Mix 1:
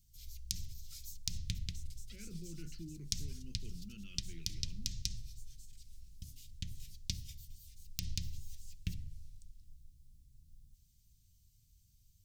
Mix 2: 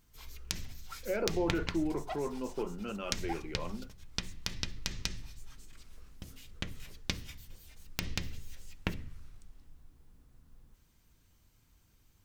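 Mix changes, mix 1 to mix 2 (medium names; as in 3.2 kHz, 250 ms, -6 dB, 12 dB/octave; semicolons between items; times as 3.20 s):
speech: entry -1.05 s; master: remove Chebyshev band-stop 120–4900 Hz, order 2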